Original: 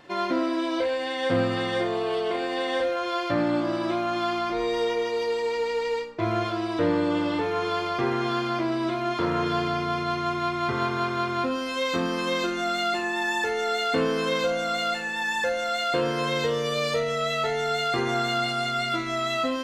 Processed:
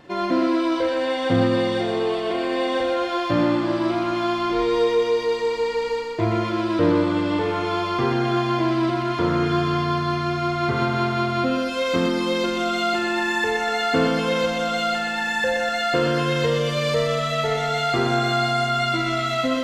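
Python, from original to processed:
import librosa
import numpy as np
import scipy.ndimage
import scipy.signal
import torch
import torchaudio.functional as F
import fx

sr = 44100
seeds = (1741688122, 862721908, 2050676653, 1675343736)

p1 = fx.low_shelf(x, sr, hz=440.0, db=7.5)
y = p1 + fx.echo_thinned(p1, sr, ms=124, feedback_pct=71, hz=300.0, wet_db=-4, dry=0)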